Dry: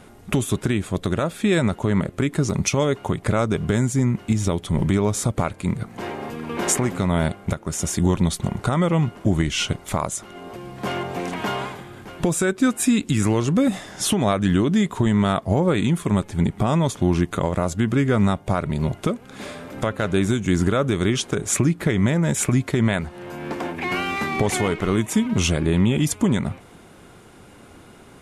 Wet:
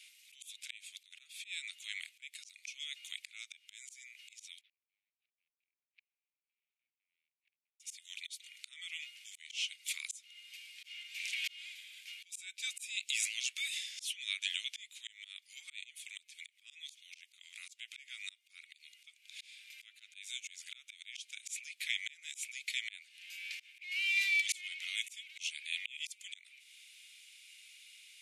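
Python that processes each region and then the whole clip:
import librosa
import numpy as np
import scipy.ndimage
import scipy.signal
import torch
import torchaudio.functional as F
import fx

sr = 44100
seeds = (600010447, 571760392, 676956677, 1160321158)

y = fx.chain(x, sr, fx.median_filter(points=41),
    fx.air_absorb(metres=440.0),
    fx.gate_flip(shuts_db=-29.0, range_db=-41), at=(4.61, 7.8))
y = scipy.signal.sosfilt(scipy.signal.cheby1(5, 1.0, 2300.0, 'highpass', fs=sr, output='sos'), y)
y = fx.auto_swell(y, sr, attack_ms=451.0)
y = fx.high_shelf(y, sr, hz=6800.0, db=-8.5)
y = y * librosa.db_to_amplitude(3.5)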